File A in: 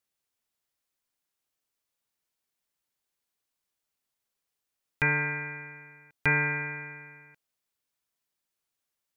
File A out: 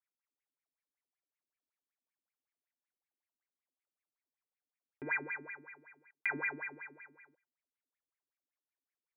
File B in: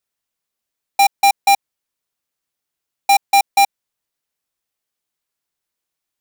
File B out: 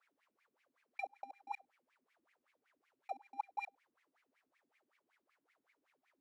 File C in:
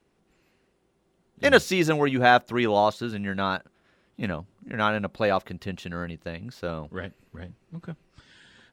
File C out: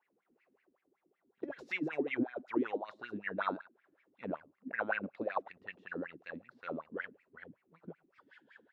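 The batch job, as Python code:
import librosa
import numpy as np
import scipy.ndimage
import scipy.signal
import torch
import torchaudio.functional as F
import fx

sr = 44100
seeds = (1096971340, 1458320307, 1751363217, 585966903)

y = fx.over_compress(x, sr, threshold_db=-24.0, ratio=-0.5)
y = y + 10.0 ** (-23.5 / 20.0) * np.pad(y, (int(102 * sr / 1000.0), 0))[:len(y)]
y = fx.wah_lfo(y, sr, hz=5.3, low_hz=250.0, high_hz=2300.0, q=8.5)
y = y * librosa.db_to_amplitude(2.5)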